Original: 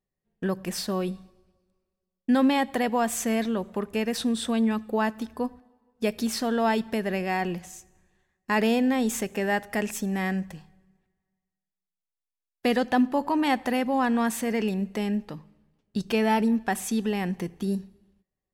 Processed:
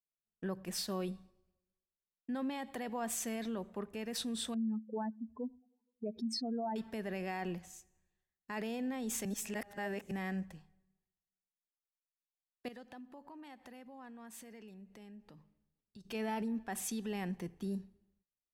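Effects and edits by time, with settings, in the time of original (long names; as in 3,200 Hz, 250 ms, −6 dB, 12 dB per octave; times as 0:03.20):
0:04.54–0:06.76: expanding power law on the bin magnitudes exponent 2.7
0:09.25–0:10.11: reverse
0:12.68–0:16.05: downward compressor 4 to 1, threshold −39 dBFS
whole clip: brickwall limiter −22 dBFS; multiband upward and downward expander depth 40%; level −9 dB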